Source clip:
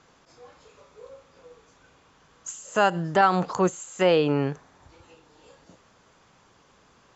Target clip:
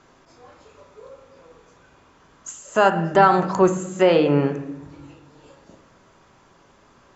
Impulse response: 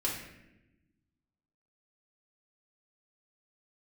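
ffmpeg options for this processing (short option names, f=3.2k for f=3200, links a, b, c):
-filter_complex "[0:a]asplit=2[a][b];[1:a]atrim=start_sample=2205,lowpass=2.3k[c];[b][c]afir=irnorm=-1:irlink=0,volume=-6.5dB[d];[a][d]amix=inputs=2:normalize=0,volume=1dB"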